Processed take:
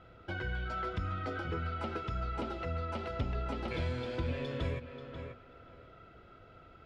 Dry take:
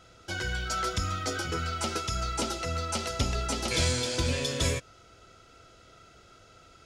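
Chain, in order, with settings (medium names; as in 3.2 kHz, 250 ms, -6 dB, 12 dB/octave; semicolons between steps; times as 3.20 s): tape echo 536 ms, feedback 20%, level -12.5 dB, low-pass 3.1 kHz; compression 2:1, threshold -36 dBFS, peak gain reduction 8 dB; distance through air 490 m; trim +1.5 dB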